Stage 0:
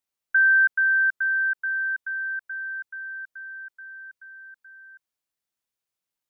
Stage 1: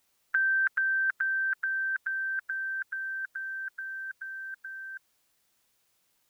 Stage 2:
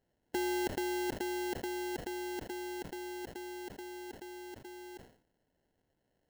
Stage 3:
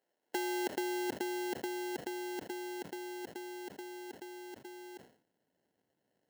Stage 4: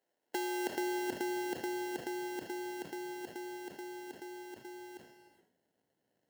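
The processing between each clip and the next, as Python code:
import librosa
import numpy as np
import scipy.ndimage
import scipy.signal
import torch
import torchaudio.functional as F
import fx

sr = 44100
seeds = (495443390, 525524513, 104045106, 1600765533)

y1 = fx.spectral_comp(x, sr, ratio=2.0)
y2 = fx.sample_hold(y1, sr, seeds[0], rate_hz=1200.0, jitter_pct=0)
y2 = fx.sustainer(y2, sr, db_per_s=110.0)
y2 = y2 * librosa.db_to_amplitude(-7.5)
y3 = fx.transient(y2, sr, attack_db=3, sustain_db=-1)
y3 = fx.filter_sweep_highpass(y3, sr, from_hz=410.0, to_hz=160.0, start_s=0.37, end_s=1.05, q=0.77)
y3 = y3 * librosa.db_to_amplitude(-1.0)
y4 = fx.rev_gated(y3, sr, seeds[1], gate_ms=450, shape='flat', drr_db=8.0)
y4 = y4 * librosa.db_to_amplitude(-1.0)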